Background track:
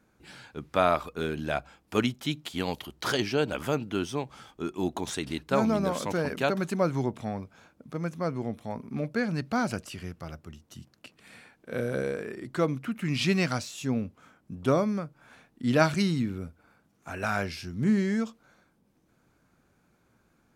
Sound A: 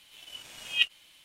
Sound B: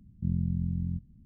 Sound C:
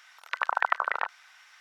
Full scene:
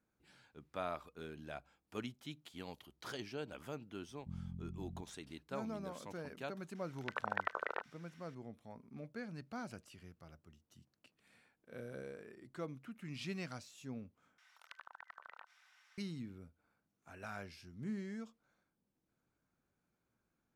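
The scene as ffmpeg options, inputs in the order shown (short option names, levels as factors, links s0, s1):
-filter_complex "[3:a]asplit=2[s0][s1];[0:a]volume=0.133[s2];[s0]lowshelf=f=610:t=q:w=1.5:g=11[s3];[s1]acompressor=threshold=0.0141:ratio=6:attack=3.2:release=140:knee=1:detection=peak[s4];[s2]asplit=2[s5][s6];[s5]atrim=end=14.384[s7];[s4]atrim=end=1.6,asetpts=PTS-STARTPTS,volume=0.224[s8];[s6]atrim=start=15.976[s9];[2:a]atrim=end=1.25,asetpts=PTS-STARTPTS,volume=0.141,afade=t=in:d=0.004:c=hsin,afade=t=out:st=1.246:d=0.004:c=hsin,adelay=4040[s10];[s3]atrim=end=1.6,asetpts=PTS-STARTPTS,volume=0.282,afade=t=in:d=0.004:c=hsin,afade=t=out:st=1.596:d=0.004:c=hsin,adelay=6750[s11];[s7][s8]acrossfade=d=0.004:c1=hsin:c2=hsin[s12];[s12][s9]acrossfade=d=0.004:c1=hsin:c2=hsin[s13];[s13][s10][s11]amix=inputs=3:normalize=0"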